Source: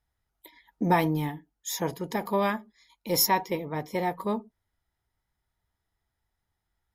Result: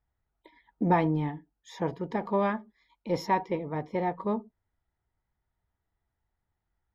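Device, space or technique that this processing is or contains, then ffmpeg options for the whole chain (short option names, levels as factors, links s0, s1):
phone in a pocket: -af "lowpass=3700,highshelf=f=2300:g=-10"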